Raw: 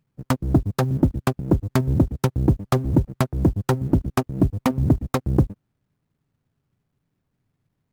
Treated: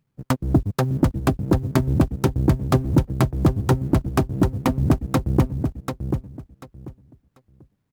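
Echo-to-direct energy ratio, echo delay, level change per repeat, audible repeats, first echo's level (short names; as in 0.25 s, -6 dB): -6.0 dB, 0.74 s, -13.5 dB, 3, -6.0 dB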